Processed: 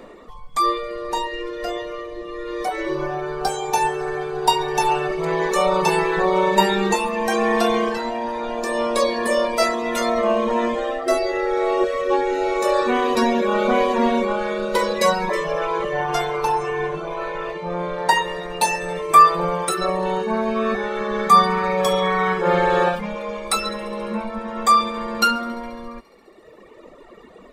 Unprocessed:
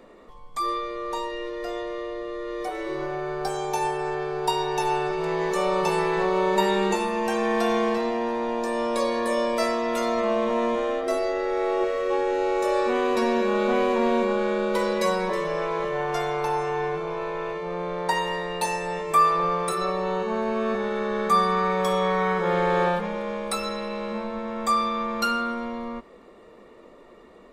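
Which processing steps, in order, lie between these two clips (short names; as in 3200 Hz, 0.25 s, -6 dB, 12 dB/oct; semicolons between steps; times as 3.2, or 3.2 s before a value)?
thin delay 69 ms, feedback 83%, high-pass 1600 Hz, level -14 dB; reverb removal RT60 1.8 s; gain +8.5 dB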